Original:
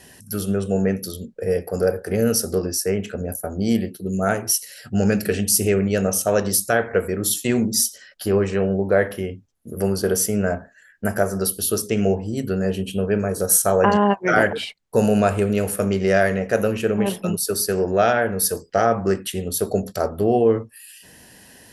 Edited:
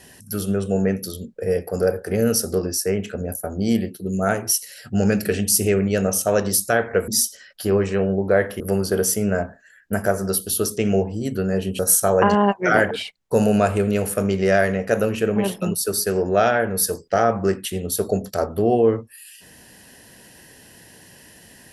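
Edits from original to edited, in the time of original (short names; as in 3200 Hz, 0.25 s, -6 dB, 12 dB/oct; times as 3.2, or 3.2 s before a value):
7.08–7.69 cut
9.21–9.72 cut
12.91–13.41 cut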